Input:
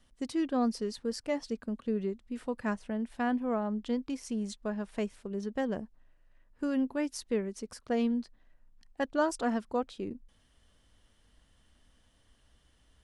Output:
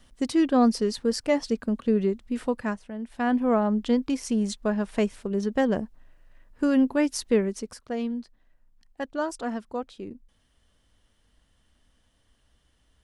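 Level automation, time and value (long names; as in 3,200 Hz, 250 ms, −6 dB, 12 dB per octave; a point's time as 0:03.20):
0:02.47 +9 dB
0:02.91 −2.5 dB
0:03.43 +9 dB
0:07.50 +9 dB
0:07.90 −0.5 dB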